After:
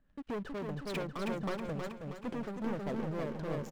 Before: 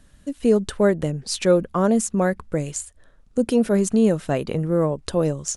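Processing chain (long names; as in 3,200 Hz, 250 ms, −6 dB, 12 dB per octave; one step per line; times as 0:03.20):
low-pass filter 2,000 Hz 12 dB per octave
parametric band 62 Hz −10.5 dB 0.66 octaves
leveller curve on the samples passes 3
downward compressor 3 to 1, threshold −32 dBFS, peak gain reduction 16.5 dB
tempo change 1.5×
gain into a clipping stage and back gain 28 dB
on a send: repeating echo 319 ms, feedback 55%, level −3 dB
on the sum: amplitude modulation by smooth noise, depth 60%
level −5 dB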